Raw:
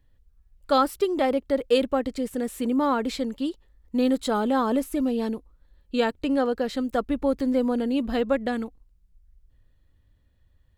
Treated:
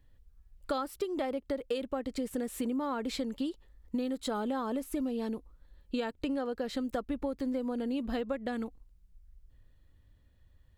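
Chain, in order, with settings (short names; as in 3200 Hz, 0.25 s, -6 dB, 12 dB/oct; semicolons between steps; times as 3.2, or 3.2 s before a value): compressor 10:1, threshold -30 dBFS, peak gain reduction 15 dB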